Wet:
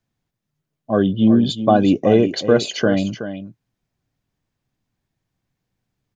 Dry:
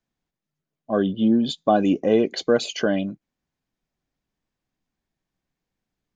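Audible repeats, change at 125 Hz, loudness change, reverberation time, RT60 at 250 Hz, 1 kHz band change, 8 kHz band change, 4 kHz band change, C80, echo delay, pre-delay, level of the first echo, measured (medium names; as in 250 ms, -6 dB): 1, +9.5 dB, +4.5 dB, no reverb, no reverb, +4.0 dB, no reading, +4.0 dB, no reverb, 373 ms, no reverb, -11.0 dB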